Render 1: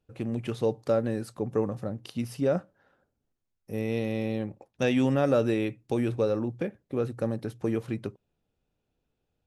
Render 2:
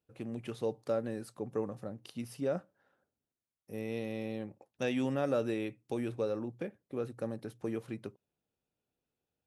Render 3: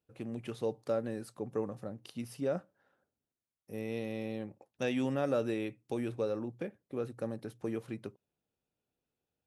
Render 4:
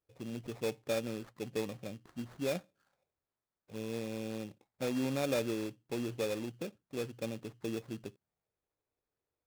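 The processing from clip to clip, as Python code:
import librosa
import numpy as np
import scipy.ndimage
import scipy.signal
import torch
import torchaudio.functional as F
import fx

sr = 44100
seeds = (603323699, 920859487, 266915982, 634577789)

y1 = fx.highpass(x, sr, hz=150.0, slope=6)
y1 = fx.peak_eq(y1, sr, hz=10000.0, db=3.5, octaves=0.36)
y1 = F.gain(torch.from_numpy(y1), -7.0).numpy()
y2 = y1
y3 = fx.env_phaser(y2, sr, low_hz=200.0, high_hz=3000.0, full_db=-35.0)
y3 = fx.sample_hold(y3, sr, seeds[0], rate_hz=3000.0, jitter_pct=0)
y3 = fx.noise_mod_delay(y3, sr, seeds[1], noise_hz=1500.0, depth_ms=0.033)
y3 = F.gain(torch.from_numpy(y3), -1.0).numpy()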